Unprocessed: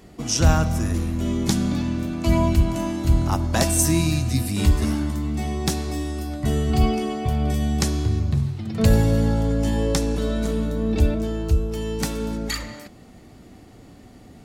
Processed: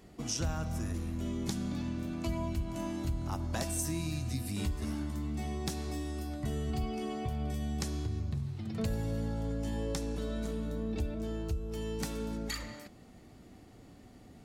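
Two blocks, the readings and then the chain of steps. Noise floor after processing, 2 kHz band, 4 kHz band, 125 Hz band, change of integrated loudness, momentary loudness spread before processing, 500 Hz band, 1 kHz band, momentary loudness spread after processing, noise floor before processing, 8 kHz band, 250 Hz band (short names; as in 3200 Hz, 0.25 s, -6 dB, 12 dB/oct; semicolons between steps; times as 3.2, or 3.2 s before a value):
-55 dBFS, -13.5 dB, -13.0 dB, -14.0 dB, -13.5 dB, 8 LU, -13.0 dB, -13.5 dB, 12 LU, -47 dBFS, -13.5 dB, -13.0 dB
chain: compressor 3:1, threshold -24 dBFS, peak gain reduction 10.5 dB; gain -8.5 dB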